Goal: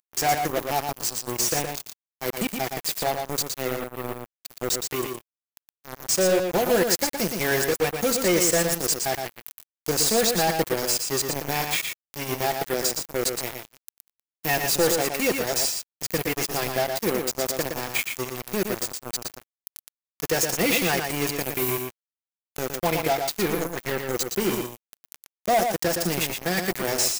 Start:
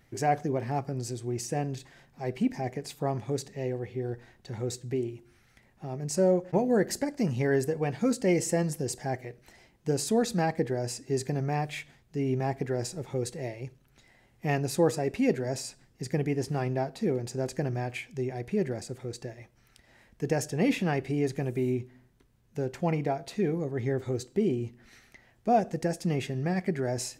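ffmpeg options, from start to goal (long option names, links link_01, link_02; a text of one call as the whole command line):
ffmpeg -i in.wav -filter_complex "[0:a]aemphasis=mode=production:type=riaa,acrossover=split=5400[link_01][link_02];[link_02]acompressor=threshold=-43dB:ratio=4:attack=1:release=60[link_03];[link_01][link_03]amix=inputs=2:normalize=0,highshelf=frequency=9300:gain=10,aecho=1:1:5.9:0.39,acrusher=bits=4:mix=0:aa=0.5,asoftclip=type=tanh:threshold=-24.5dB,aexciter=amount=1.6:drive=2.7:freq=12000,asplit=2[link_04][link_05];[link_05]aecho=0:1:117:0.531[link_06];[link_04][link_06]amix=inputs=2:normalize=0,volume=8.5dB" out.wav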